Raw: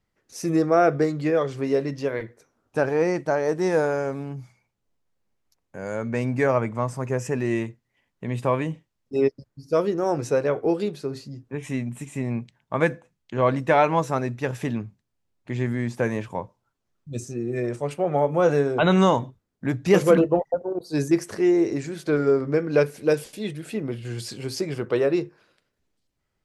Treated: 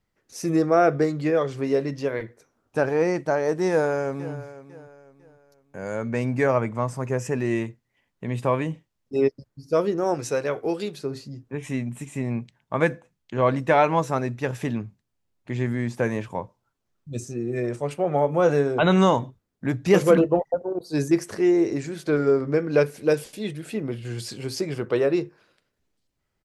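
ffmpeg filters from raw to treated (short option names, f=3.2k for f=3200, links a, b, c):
-filter_complex "[0:a]asplit=2[a][b];[b]afade=t=in:st=3.69:d=0.01,afade=t=out:st=4.37:d=0.01,aecho=0:1:500|1000|1500:0.16788|0.0587581|0.0205653[c];[a][c]amix=inputs=2:normalize=0,asettb=1/sr,asplit=3[d][e][f];[d]atrim=end=10.144[g];[e]atrim=start=10.14:end=10.99,asetpts=PTS-STARTPTS,afade=t=in:d=0.004:c=qsin,afade=t=out:st=0.846:d=0.004:c=qsin,tiltshelf=f=1.4k:g=-4.5[h];[f]atrim=start=10.986[i];[g][h]acrossfade=d=0.004:c1=hsin:c2=qsin[j];[j][i]acrossfade=d=0.004:c1=qsin:c2=hsin"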